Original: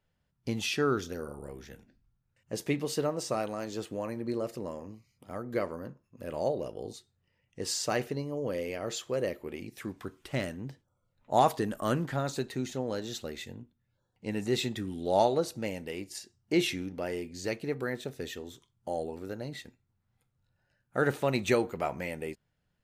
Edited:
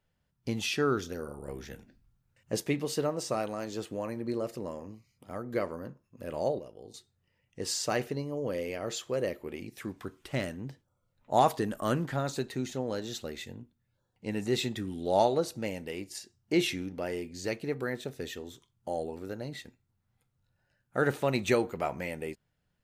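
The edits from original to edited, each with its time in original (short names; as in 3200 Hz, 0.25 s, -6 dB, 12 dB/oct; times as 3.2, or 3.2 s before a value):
1.48–2.6 gain +4 dB
6.59–6.94 gain -9 dB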